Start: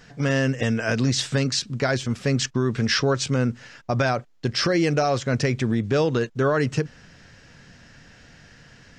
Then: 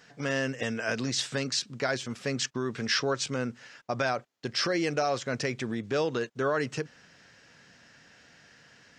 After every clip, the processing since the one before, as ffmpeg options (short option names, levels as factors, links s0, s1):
-af "highpass=f=360:p=1,volume=0.596"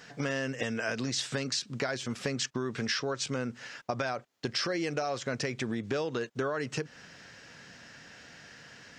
-af "acompressor=threshold=0.0178:ratio=5,volume=1.88"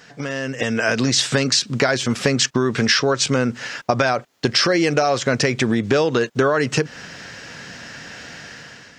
-af "dynaudnorm=f=260:g=5:m=3.16,volume=1.68"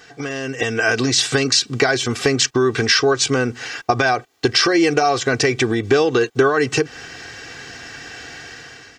-af "aecho=1:1:2.6:0.69"